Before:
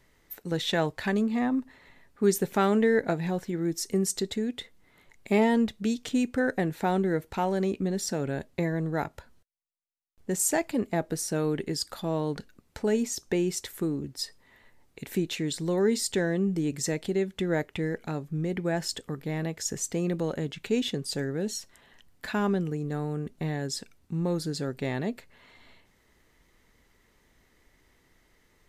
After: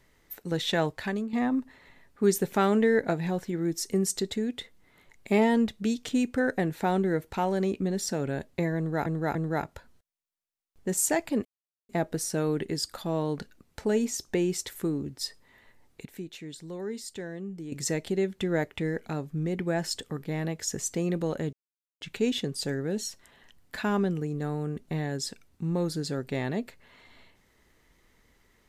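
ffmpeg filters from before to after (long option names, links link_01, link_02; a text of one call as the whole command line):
ffmpeg -i in.wav -filter_complex "[0:a]asplit=8[link_01][link_02][link_03][link_04][link_05][link_06][link_07][link_08];[link_01]atrim=end=1.33,asetpts=PTS-STARTPTS,afade=type=out:start_time=0.88:duration=0.45:silence=0.334965[link_09];[link_02]atrim=start=1.33:end=9.062,asetpts=PTS-STARTPTS,afade=type=in:duration=0.004:curve=hsin:silence=0.334965[link_10];[link_03]atrim=start=8.768:end=9.062[link_11];[link_04]atrim=start=8.768:end=10.87,asetpts=PTS-STARTPTS,afade=type=out:start_time=2.098:duration=0.004:curve=hsin,apad=pad_dur=0.44[link_12];[link_05]atrim=start=10.87:end=15.032,asetpts=PTS-STARTPTS,afade=type=in:duration=0.004:curve=hsin[link_13];[link_06]atrim=start=15.028:end=16.702,asetpts=PTS-STARTPTS,volume=-11dB[link_14];[link_07]atrim=start=16.698:end=20.51,asetpts=PTS-STARTPTS,afade=type=out:start_time=3.808:duration=0.004:curve=hsin,apad=pad_dur=0.48[link_15];[link_08]atrim=start=20.51,asetpts=PTS-STARTPTS,afade=type=in:duration=0.004:curve=hsin[link_16];[link_09][link_10]concat=n=2:v=0:a=1[link_17];[link_17][link_11]acrossfade=duration=0.004:curve1=hsin:curve2=hsin[link_18];[link_12][link_13]concat=n=2:v=0:a=1[link_19];[link_18][link_19]acrossfade=duration=0.004:curve1=hsin:curve2=hsin[link_20];[link_20][link_14]acrossfade=duration=0.004:curve1=hsin:curve2=hsin[link_21];[link_15][link_16]concat=n=2:v=0:a=1[link_22];[link_21][link_22]acrossfade=duration=0.004:curve1=hsin:curve2=hsin" out.wav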